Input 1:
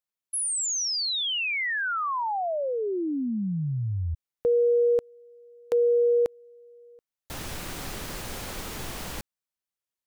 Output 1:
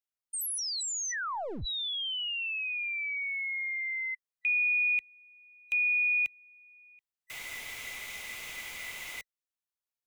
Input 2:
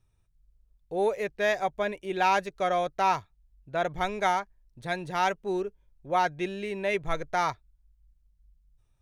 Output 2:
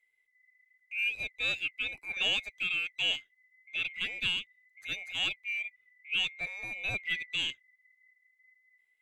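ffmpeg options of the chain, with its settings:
-filter_complex "[0:a]afftfilt=real='real(if(lt(b,920),b+92*(1-2*mod(floor(b/92),2)),b),0)':imag='imag(if(lt(b,920),b+92*(1-2*mod(floor(b/92),2)),b),0)':win_size=2048:overlap=0.75,acrossover=split=110|500|2900[s0][s1][s2][s3];[s1]aeval=exprs='max(val(0),0)':c=same[s4];[s0][s4][s2][s3]amix=inputs=4:normalize=0,volume=0.501"

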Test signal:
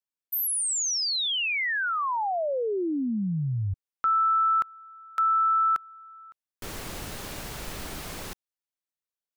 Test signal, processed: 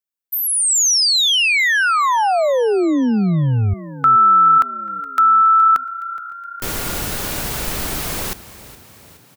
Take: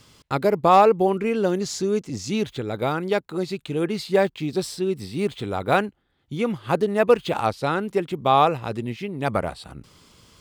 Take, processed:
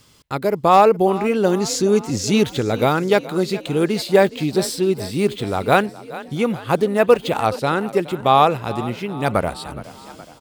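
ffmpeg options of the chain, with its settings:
-filter_complex "[0:a]highshelf=f=9900:g=8,dynaudnorm=f=420:g=3:m=4.22,asplit=2[s0][s1];[s1]asplit=5[s2][s3][s4][s5][s6];[s2]adelay=419,afreqshift=31,volume=0.141[s7];[s3]adelay=838,afreqshift=62,volume=0.0804[s8];[s4]adelay=1257,afreqshift=93,volume=0.0457[s9];[s5]adelay=1676,afreqshift=124,volume=0.0263[s10];[s6]adelay=2095,afreqshift=155,volume=0.015[s11];[s7][s8][s9][s10][s11]amix=inputs=5:normalize=0[s12];[s0][s12]amix=inputs=2:normalize=0,volume=0.891"

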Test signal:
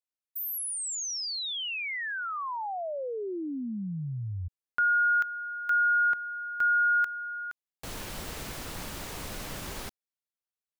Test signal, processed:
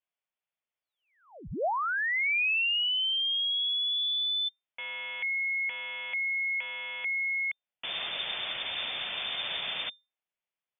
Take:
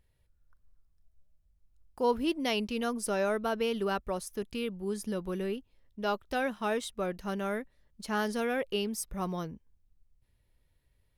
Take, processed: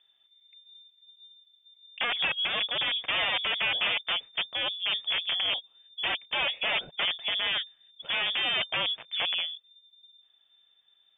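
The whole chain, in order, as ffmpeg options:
-af "aeval=exprs='(mod(22.4*val(0)+1,2)-1)/22.4':c=same,lowpass=f=3100:t=q:w=0.5098,lowpass=f=3100:t=q:w=0.6013,lowpass=f=3100:t=q:w=0.9,lowpass=f=3100:t=q:w=2.563,afreqshift=-3600,equalizer=f=160:t=o:w=0.67:g=5,equalizer=f=630:t=o:w=0.67:g=6,equalizer=f=2500:t=o:w=0.67:g=4,volume=1.41"

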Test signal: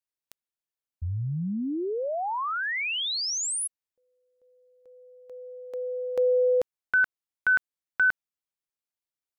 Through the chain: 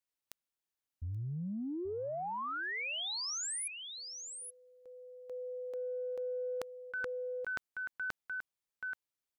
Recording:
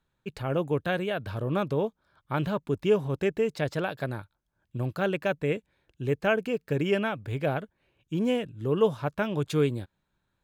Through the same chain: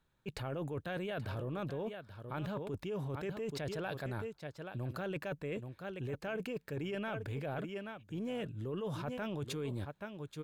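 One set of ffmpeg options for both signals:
-af "aecho=1:1:830:0.15,areverse,acompressor=threshold=0.0126:ratio=10:attack=9:release=21:knee=1:detection=rms,areverse"

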